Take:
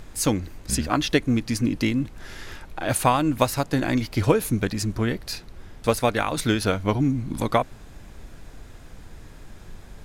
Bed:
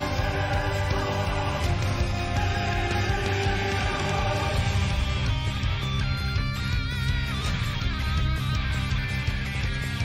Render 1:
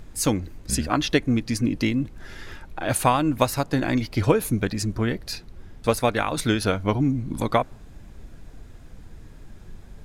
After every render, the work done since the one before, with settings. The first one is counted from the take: denoiser 6 dB, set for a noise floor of -45 dBFS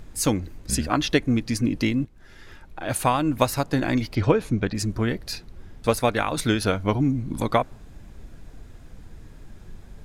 2.05–3.42 fade in, from -13 dB; 4.15–4.75 air absorption 100 m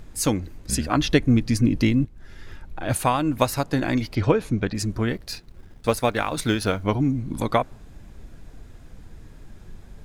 0.95–2.97 low shelf 200 Hz +8 dB; 5.13–6.83 G.711 law mismatch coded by A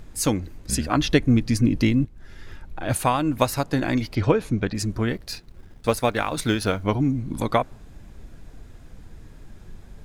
nothing audible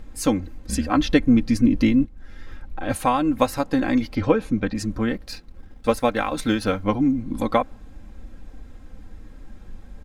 high shelf 3500 Hz -7 dB; comb 3.8 ms, depth 61%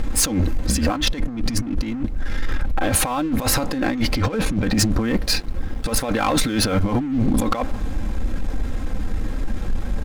negative-ratio compressor -30 dBFS, ratio -1; sample leveller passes 3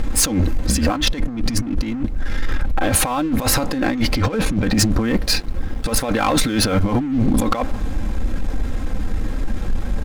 gain +2 dB

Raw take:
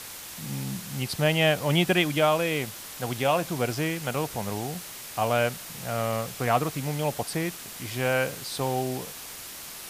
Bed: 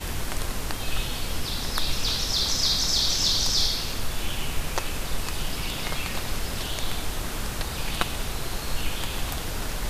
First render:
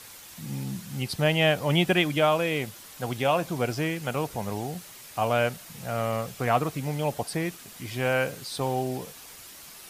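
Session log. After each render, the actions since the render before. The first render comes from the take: denoiser 7 dB, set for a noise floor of -41 dBFS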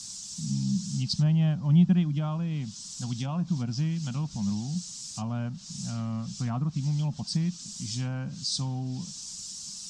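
treble ducked by the level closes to 1400 Hz, closed at -21.5 dBFS; EQ curve 110 Hz 0 dB, 200 Hz +9 dB, 430 Hz -25 dB, 1000 Hz -11 dB, 2100 Hz -17 dB, 5400 Hz +13 dB, 7800 Hz +11 dB, 12000 Hz -21 dB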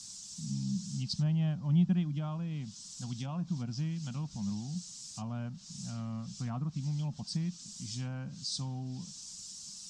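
gain -6.5 dB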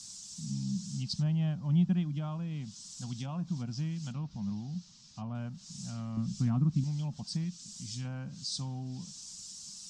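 4.12–5.35 air absorption 180 m; 6.17–6.84 resonant low shelf 400 Hz +7 dB, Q 1.5; 7.44–8.05 dynamic EQ 620 Hz, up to -6 dB, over -56 dBFS, Q 0.7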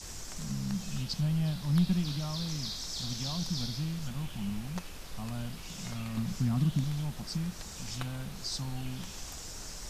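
add bed -15.5 dB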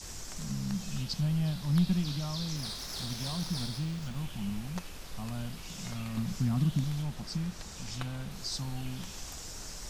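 2.56–4.16 running maximum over 3 samples; 7.02–8.31 high shelf 9700 Hz -7 dB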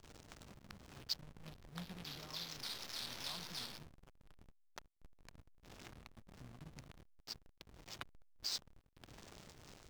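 band-pass 3600 Hz, Q 0.63; backlash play -35.5 dBFS

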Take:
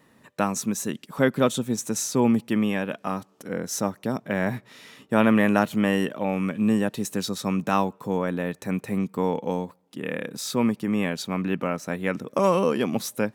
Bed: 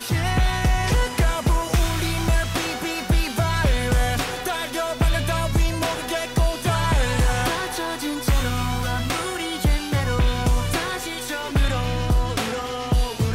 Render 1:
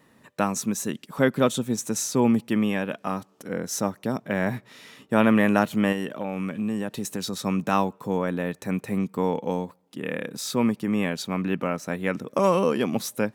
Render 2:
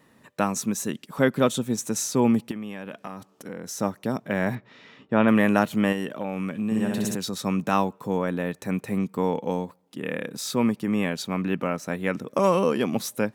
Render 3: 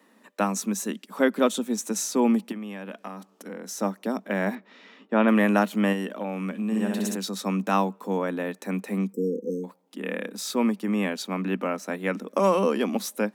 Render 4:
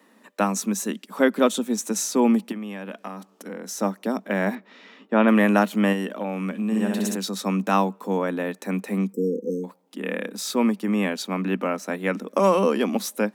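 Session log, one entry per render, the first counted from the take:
5.92–7.33 compressor 3:1, threshold -25 dBFS
2.51–3.8 compressor, threshold -31 dBFS; 4.55–5.28 air absorption 190 m; 6.65–7.15 flutter echo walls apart 11 m, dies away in 1.5 s
9.13–9.64 spectral delete 520–5100 Hz; Chebyshev high-pass 190 Hz, order 6
gain +2.5 dB

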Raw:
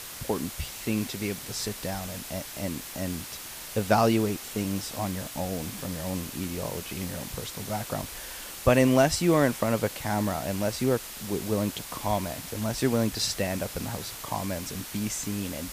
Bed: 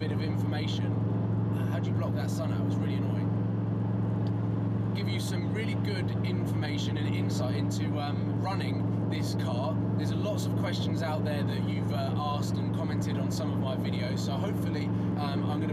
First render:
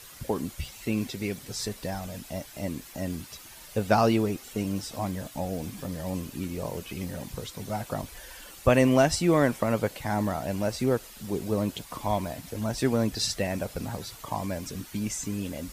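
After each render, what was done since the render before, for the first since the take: denoiser 10 dB, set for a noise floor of -41 dBFS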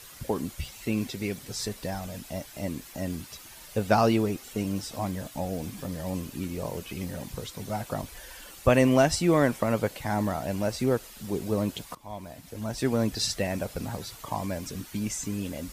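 11.95–13.04 fade in, from -20 dB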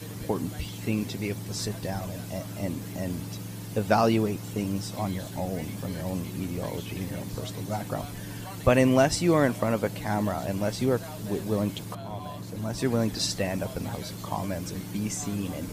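add bed -9 dB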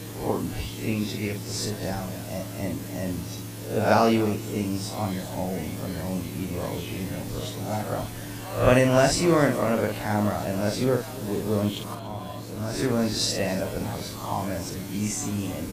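spectral swells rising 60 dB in 0.46 s; tapped delay 48/288 ms -6/-18 dB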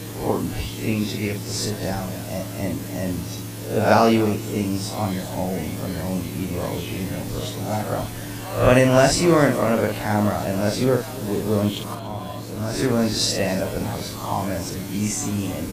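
gain +4 dB; limiter -3 dBFS, peak gain reduction 1.5 dB

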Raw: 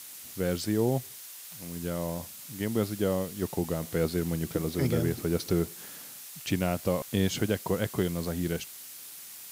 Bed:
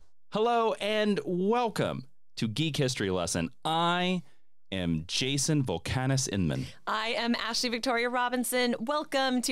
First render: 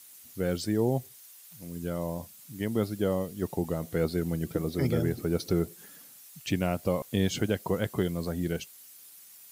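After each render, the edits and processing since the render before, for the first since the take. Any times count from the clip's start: denoiser 10 dB, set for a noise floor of -45 dBFS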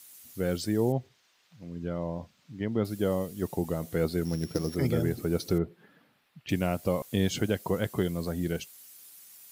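0.92–2.85 air absorption 200 m; 4.25–4.76 sample sorter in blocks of 8 samples; 5.58–6.49 air absorption 420 m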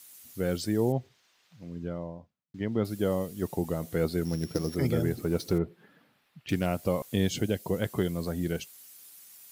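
1.67–2.54 studio fade out; 5.16–6.66 self-modulated delay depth 0.098 ms; 7.27–7.82 bell 1200 Hz -8 dB 1.1 oct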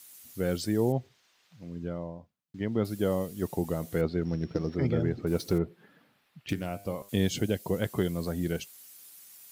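4.01–5.27 air absorption 200 m; 6.53–7.09 resonator 100 Hz, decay 0.48 s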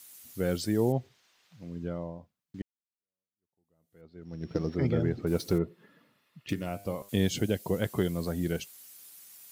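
2.62–4.53 fade in exponential; 5.56–6.67 notch comb 770 Hz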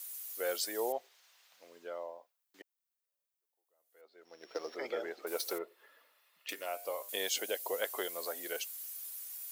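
HPF 520 Hz 24 dB/oct; high shelf 11000 Hz +11.5 dB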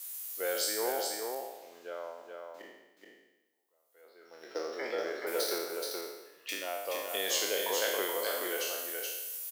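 spectral trails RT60 0.97 s; on a send: echo 0.426 s -4.5 dB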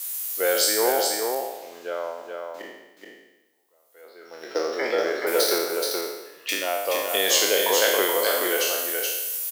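gain +11 dB

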